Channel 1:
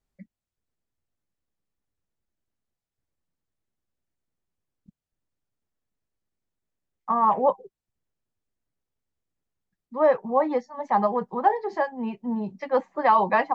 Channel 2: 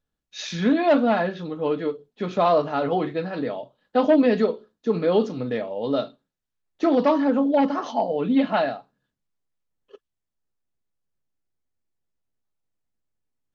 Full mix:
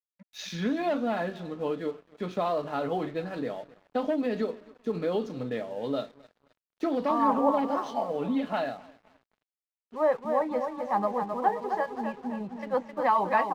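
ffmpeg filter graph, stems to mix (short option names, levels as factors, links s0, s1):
-filter_complex "[0:a]volume=0.562,asplit=2[s0][s1];[s1]volume=0.501[s2];[1:a]acompressor=threshold=0.112:ratio=6,volume=0.562,asplit=2[s3][s4];[s4]volume=0.0944[s5];[s2][s5]amix=inputs=2:normalize=0,aecho=0:1:263|526|789|1052|1315|1578|1841:1|0.48|0.23|0.111|0.0531|0.0255|0.0122[s6];[s0][s3][s6]amix=inputs=3:normalize=0,aeval=exprs='sgn(val(0))*max(abs(val(0))-0.00211,0)':c=same"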